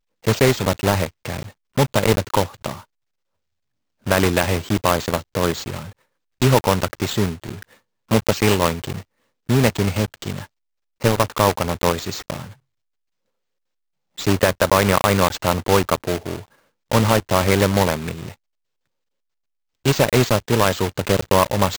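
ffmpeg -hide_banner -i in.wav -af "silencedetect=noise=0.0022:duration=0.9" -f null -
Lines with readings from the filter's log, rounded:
silence_start: 2.85
silence_end: 4.02 | silence_duration: 1.17
silence_start: 12.58
silence_end: 14.17 | silence_duration: 1.60
silence_start: 18.35
silence_end: 19.85 | silence_duration: 1.50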